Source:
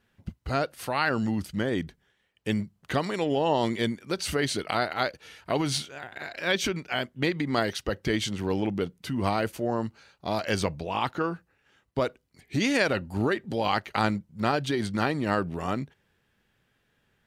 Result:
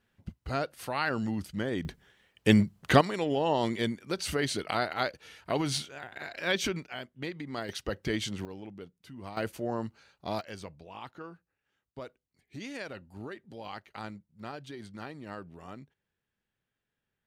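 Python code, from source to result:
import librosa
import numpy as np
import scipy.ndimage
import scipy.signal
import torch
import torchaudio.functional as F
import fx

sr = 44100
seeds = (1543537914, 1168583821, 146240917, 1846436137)

y = fx.gain(x, sr, db=fx.steps((0.0, -4.5), (1.85, 6.5), (3.01, -3.0), (6.86, -11.0), (7.69, -4.5), (8.45, -16.5), (9.37, -5.0), (10.41, -16.0)))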